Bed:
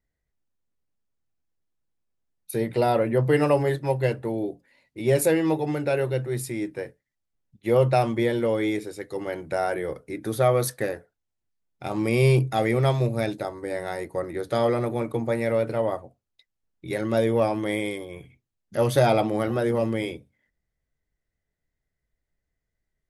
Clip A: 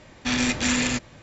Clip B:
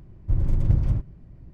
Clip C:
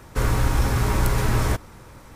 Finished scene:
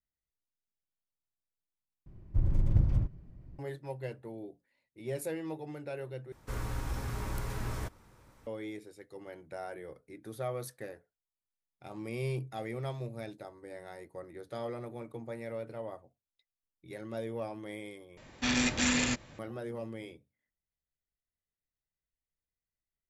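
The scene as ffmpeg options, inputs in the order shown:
ffmpeg -i bed.wav -i cue0.wav -i cue1.wav -i cue2.wav -filter_complex "[0:a]volume=-16dB,asplit=4[link_01][link_02][link_03][link_04];[link_01]atrim=end=2.064[link_05];[2:a]atrim=end=1.53,asetpts=PTS-STARTPTS,volume=-5.5dB[link_06];[link_02]atrim=start=3.586:end=6.324[link_07];[3:a]atrim=end=2.15,asetpts=PTS-STARTPTS,volume=-15.5dB[link_08];[link_03]atrim=start=8.466:end=18.174[link_09];[1:a]atrim=end=1.22,asetpts=PTS-STARTPTS,volume=-5.5dB[link_10];[link_04]atrim=start=19.386[link_11];[link_05][link_06]acrossfade=duration=0.004:curve1=hsin:curve2=hsin[link_12];[link_12][link_07]acrossfade=duration=0.004:curve1=hsin:curve2=hsin[link_13];[link_13][link_08]acrossfade=duration=0.004:curve1=hsin:curve2=hsin[link_14];[link_14][link_09]acrossfade=duration=0.004:curve1=hsin:curve2=hsin[link_15];[link_15][link_10]acrossfade=duration=0.004:curve1=hsin:curve2=hsin[link_16];[link_16][link_11]acrossfade=duration=0.004:curve1=hsin:curve2=hsin" out.wav

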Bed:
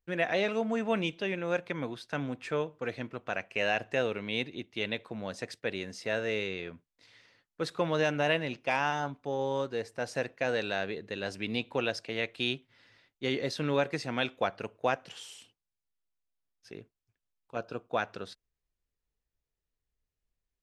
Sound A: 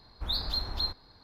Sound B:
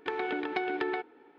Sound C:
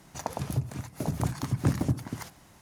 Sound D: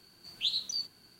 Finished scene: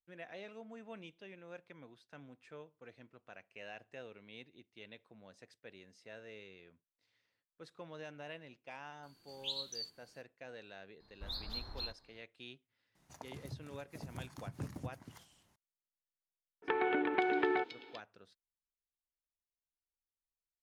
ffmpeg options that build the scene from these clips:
ffmpeg -i bed.wav -i cue0.wav -i cue1.wav -i cue2.wav -i cue3.wav -filter_complex "[0:a]volume=-20dB[link_01];[2:a]acrossover=split=3500[link_02][link_03];[link_03]adelay=520[link_04];[link_02][link_04]amix=inputs=2:normalize=0[link_05];[4:a]atrim=end=1.19,asetpts=PTS-STARTPTS,volume=-9dB,afade=type=in:duration=0.004:curve=hsin,afade=type=out:start_time=1.186:duration=0.004:curve=hsin,adelay=9030[link_06];[1:a]atrim=end=1.23,asetpts=PTS-STARTPTS,volume=-11.5dB,afade=type=in:duration=0.004:curve=hsin,afade=type=out:start_time=1.226:duration=0.004:curve=hsin,adelay=11000[link_07];[3:a]atrim=end=2.61,asetpts=PTS-STARTPTS,volume=-17.5dB,afade=type=in:duration=0.004:curve=hsin,afade=type=out:start_time=2.606:duration=0.004:curve=hsin,adelay=12950[link_08];[link_05]atrim=end=1.38,asetpts=PTS-STARTPTS,afade=type=in:duration=0.004:curve=hsin,afade=type=out:start_time=1.376:duration=0.004:curve=hsin,adelay=16620[link_09];[link_01][link_06][link_07][link_08][link_09]amix=inputs=5:normalize=0" out.wav

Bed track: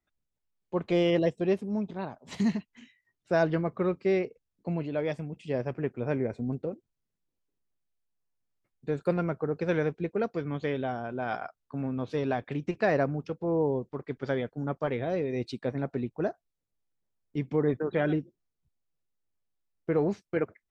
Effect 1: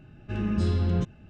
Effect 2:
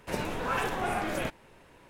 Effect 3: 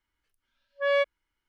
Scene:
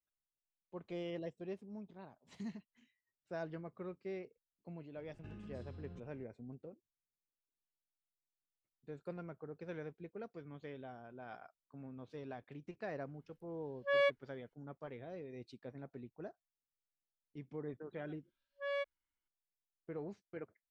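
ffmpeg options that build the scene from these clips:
ffmpeg -i bed.wav -i cue0.wav -i cue1.wav -i cue2.wav -filter_complex "[3:a]asplit=2[link_01][link_02];[0:a]volume=-18dB[link_03];[1:a]acompressor=threshold=-37dB:ratio=12:attack=19:release=29:knee=1:detection=rms,atrim=end=1.29,asetpts=PTS-STARTPTS,volume=-13.5dB,afade=type=in:duration=0.004:curve=hsin,afade=type=out:start_time=1.286:duration=0.004:curve=hsin,adelay=4950[link_04];[link_01]atrim=end=1.48,asetpts=PTS-STARTPTS,volume=-7dB,afade=type=in:duration=0.004:curve=hsin,afade=type=out:start_time=1.476:duration=0.004:curve=hsin,adelay=13060[link_05];[link_02]atrim=end=1.48,asetpts=PTS-STARTPTS,volume=-14.5dB,afade=type=in:duration=0.004:curve=hsin,afade=type=out:start_time=1.476:duration=0.004:curve=hsin,adelay=784980S[link_06];[link_03][link_04][link_05][link_06]amix=inputs=4:normalize=0" out.wav

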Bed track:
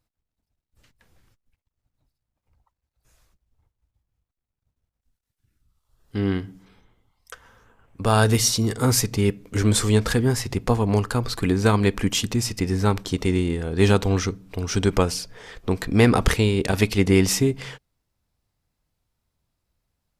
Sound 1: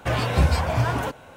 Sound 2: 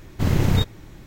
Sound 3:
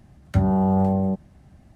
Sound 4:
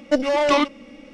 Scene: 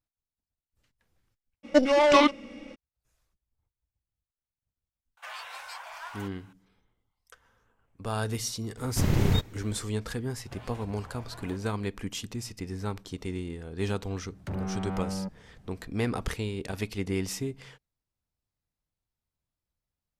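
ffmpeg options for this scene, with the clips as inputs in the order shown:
ffmpeg -i bed.wav -i cue0.wav -i cue1.wav -i cue2.wav -i cue3.wav -filter_complex "[1:a]asplit=2[link_01][link_02];[0:a]volume=-13dB[link_03];[link_01]highpass=frequency=890:width=0.5412,highpass=frequency=890:width=1.3066[link_04];[link_02]acompressor=threshold=-30dB:ratio=6:attack=3.2:release=140:knee=1:detection=peak[link_05];[3:a]asoftclip=type=tanh:threshold=-25.5dB[link_06];[4:a]atrim=end=1.13,asetpts=PTS-STARTPTS,volume=-1dB,afade=type=in:duration=0.02,afade=type=out:start_time=1.11:duration=0.02,adelay=1630[link_07];[link_04]atrim=end=1.36,asetpts=PTS-STARTPTS,volume=-11.5dB,afade=type=in:duration=0.004:curve=hsin,afade=type=out:start_time=1.356:duration=0.004:curve=hsin,adelay=227997S[link_08];[2:a]atrim=end=1.06,asetpts=PTS-STARTPTS,volume=-5dB,afade=type=in:duration=0.004:curve=hsin,afade=type=out:start_time=1.056:duration=0.004:curve=hsin,adelay=8770[link_09];[link_05]atrim=end=1.36,asetpts=PTS-STARTPTS,volume=-13.5dB,afade=type=in:duration=0.004:curve=hsin,afade=type=out:start_time=1.356:duration=0.004:curve=hsin,adelay=10460[link_10];[link_06]atrim=end=1.75,asetpts=PTS-STARTPTS,volume=-5.5dB,afade=type=in:duration=0.004:curve=hsin,afade=type=out:start_time=1.746:duration=0.004:curve=hsin,adelay=14130[link_11];[link_03][link_07][link_08][link_09][link_10][link_11]amix=inputs=6:normalize=0" out.wav

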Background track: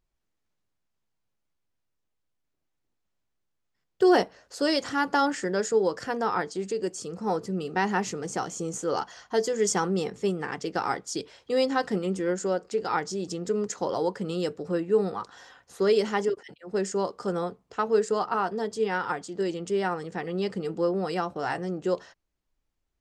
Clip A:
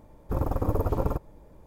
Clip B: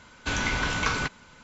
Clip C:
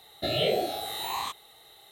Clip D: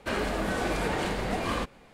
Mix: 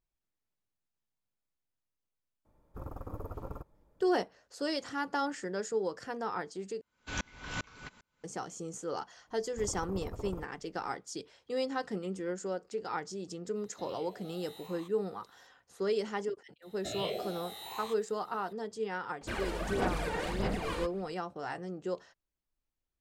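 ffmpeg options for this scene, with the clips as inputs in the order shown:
ffmpeg -i bed.wav -i cue0.wav -i cue1.wav -i cue2.wav -i cue3.wav -filter_complex "[1:a]asplit=2[link_01][link_02];[3:a]asplit=2[link_03][link_04];[0:a]volume=-9dB[link_05];[link_01]equalizer=frequency=1300:width_type=o:width=0.44:gain=6.5[link_06];[2:a]aeval=exprs='val(0)*pow(10,-35*if(lt(mod(-2.5*n/s,1),2*abs(-2.5)/1000),1-mod(-2.5*n/s,1)/(2*abs(-2.5)/1000),(mod(-2.5*n/s,1)-2*abs(-2.5)/1000)/(1-2*abs(-2.5)/1000))/20)':channel_layout=same[link_07];[link_03]acompressor=threshold=-32dB:ratio=6:attack=3.2:release=140:knee=1:detection=peak[link_08];[4:a]aphaser=in_gain=1:out_gain=1:delay=2.2:decay=0.61:speed=1.6:type=sinusoidal[link_09];[link_05]asplit=2[link_10][link_11];[link_10]atrim=end=6.814[link_12];[link_07]atrim=end=1.43,asetpts=PTS-STARTPTS,volume=-4dB[link_13];[link_11]atrim=start=8.236[link_14];[link_06]atrim=end=1.66,asetpts=PTS-STARTPTS,volume=-16dB,afade=type=in:duration=0.004:curve=hsin,afade=type=out:start_time=1.656:duration=0.004:curve=hsin,adelay=2450[link_15];[link_02]atrim=end=1.66,asetpts=PTS-STARTPTS,volume=-16dB,afade=type=in:duration=0.004:curve=hsin,afade=type=out:start_time=1.656:duration=0.004:curve=hsin,adelay=9270[link_16];[link_08]atrim=end=1.91,asetpts=PTS-STARTPTS,volume=-16.5dB,afade=type=in:duration=0.004:curve=hsin,afade=type=out:start_time=1.906:duration=0.004:curve=hsin,adelay=13560[link_17];[link_04]atrim=end=1.91,asetpts=PTS-STARTPTS,volume=-11dB,afade=type=in:duration=0.004:curve=hsin,afade=type=out:start_time=1.906:duration=0.004:curve=hsin,adelay=16620[link_18];[link_09]atrim=end=1.93,asetpts=PTS-STARTPTS,volume=-8.5dB,afade=type=in:duration=0.004:curve=hsin,afade=type=out:start_time=1.926:duration=0.004:curve=hsin,adelay=19210[link_19];[link_12][link_13]acrossfade=duration=0.004:curve1=hsin:curve2=hsin[link_20];[link_20][link_14]acrossfade=duration=0.004:curve1=hsin:curve2=hsin[link_21];[link_21][link_15][link_16][link_17][link_18][link_19]amix=inputs=6:normalize=0" out.wav

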